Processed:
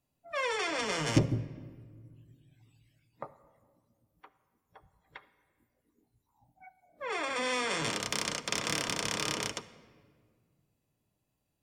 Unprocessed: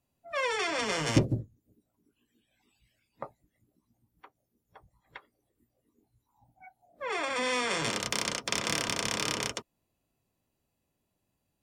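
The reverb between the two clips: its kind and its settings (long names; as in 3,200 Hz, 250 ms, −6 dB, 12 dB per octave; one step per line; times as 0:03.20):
rectangular room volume 2,700 cubic metres, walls mixed, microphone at 0.47 metres
level −2 dB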